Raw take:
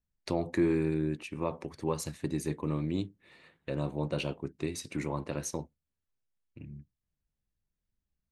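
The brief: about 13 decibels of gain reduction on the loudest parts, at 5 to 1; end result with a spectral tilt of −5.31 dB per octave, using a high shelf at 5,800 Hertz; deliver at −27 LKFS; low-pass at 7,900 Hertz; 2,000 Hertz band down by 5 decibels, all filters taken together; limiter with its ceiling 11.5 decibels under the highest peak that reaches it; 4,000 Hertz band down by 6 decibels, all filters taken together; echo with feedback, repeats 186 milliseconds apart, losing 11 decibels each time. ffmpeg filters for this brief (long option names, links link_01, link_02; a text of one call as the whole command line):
ffmpeg -i in.wav -af "lowpass=7900,equalizer=frequency=2000:width_type=o:gain=-4.5,equalizer=frequency=4000:width_type=o:gain=-7.5,highshelf=frequency=5800:gain=3.5,acompressor=threshold=-37dB:ratio=5,alimiter=level_in=10.5dB:limit=-24dB:level=0:latency=1,volume=-10.5dB,aecho=1:1:186|372|558:0.282|0.0789|0.0221,volume=19dB" out.wav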